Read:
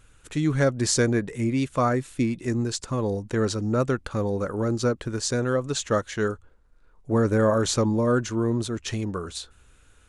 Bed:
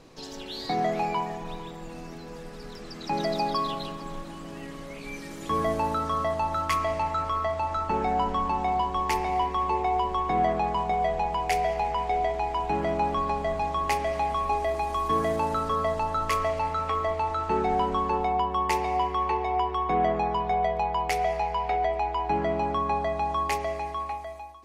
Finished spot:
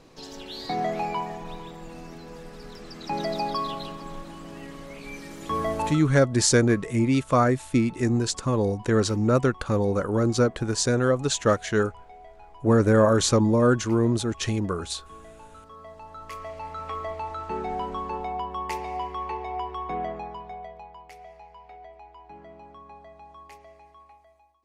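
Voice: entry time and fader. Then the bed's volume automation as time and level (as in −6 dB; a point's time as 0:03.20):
5.55 s, +2.5 dB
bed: 0:05.88 −1 dB
0:06.10 −21.5 dB
0:15.57 −21.5 dB
0:16.92 −5.5 dB
0:19.91 −5.5 dB
0:21.07 −20 dB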